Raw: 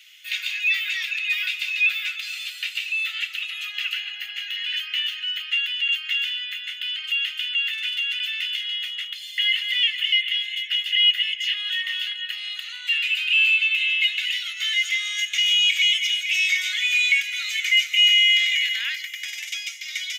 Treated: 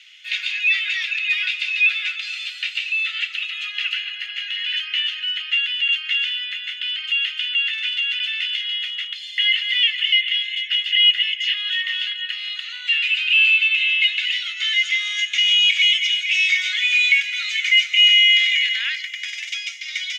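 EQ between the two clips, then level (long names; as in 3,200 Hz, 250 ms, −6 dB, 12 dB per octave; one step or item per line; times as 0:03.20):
high-pass filter 1,000 Hz 24 dB per octave
low-pass filter 5,100 Hz 12 dB per octave
+3.5 dB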